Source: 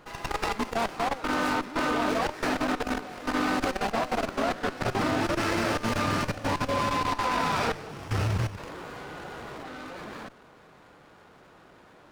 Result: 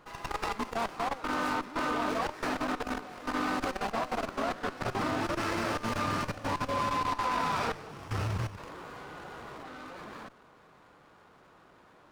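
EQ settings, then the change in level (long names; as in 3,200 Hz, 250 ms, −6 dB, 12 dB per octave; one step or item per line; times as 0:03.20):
parametric band 1,100 Hz +4 dB 0.58 octaves
−5.5 dB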